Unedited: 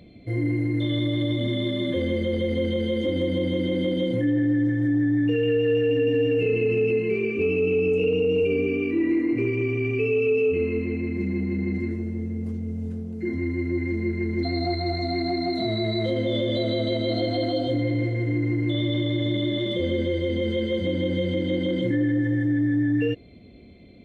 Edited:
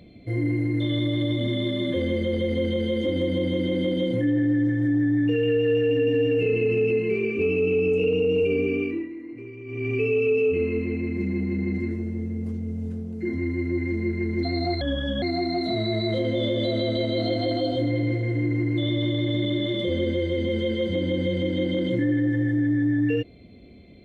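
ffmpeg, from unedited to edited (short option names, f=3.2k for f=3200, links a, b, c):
-filter_complex "[0:a]asplit=5[a][b][c][d][e];[a]atrim=end=9.09,asetpts=PTS-STARTPTS,afade=t=out:st=8.81:d=0.28:silence=0.177828[f];[b]atrim=start=9.09:end=9.65,asetpts=PTS-STARTPTS,volume=-15dB[g];[c]atrim=start=9.65:end=14.814,asetpts=PTS-STARTPTS,afade=t=in:d=0.28:silence=0.177828[h];[d]atrim=start=14.81:end=15.14,asetpts=PTS-STARTPTS,asetrate=35280,aresample=44100,atrim=end_sample=18191,asetpts=PTS-STARTPTS[i];[e]atrim=start=15.136[j];[f][g][h]concat=n=3:v=0:a=1[k];[k][i]acrossfade=d=0.004:c1=hsin:c2=hsin[l];[l][j]acrossfade=d=0.004:c1=hsin:c2=hsin"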